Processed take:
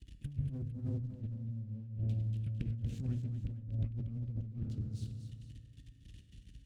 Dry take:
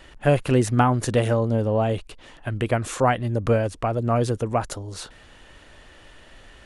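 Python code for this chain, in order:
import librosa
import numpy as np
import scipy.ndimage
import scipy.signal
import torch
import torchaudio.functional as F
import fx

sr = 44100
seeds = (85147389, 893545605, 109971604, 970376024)

p1 = fx.env_lowpass_down(x, sr, base_hz=1100.0, full_db=-18.0)
p2 = fx.curve_eq(p1, sr, hz=(270.0, 810.0, 2900.0), db=(0, -28, -3))
p3 = fx.leveller(p2, sr, passes=3)
p4 = fx.level_steps(p3, sr, step_db=22)
p5 = scipy.signal.sosfilt(scipy.signal.butter(4, 46.0, 'highpass', fs=sr, output='sos'), p4)
p6 = fx.rev_fdn(p5, sr, rt60_s=2.2, lf_ratio=1.0, hf_ratio=0.4, size_ms=11.0, drr_db=4.5)
p7 = fx.over_compress(p6, sr, threshold_db=-26.0, ratio=-0.5)
p8 = fx.tone_stack(p7, sr, knobs='10-0-1')
p9 = p8 + fx.echo_multitap(p8, sr, ms=(236, 453), db=(-9.5, -15.5), dry=0)
p10 = fx.doppler_dist(p9, sr, depth_ms=0.42)
y = F.gain(torch.from_numpy(p10), 1.5).numpy()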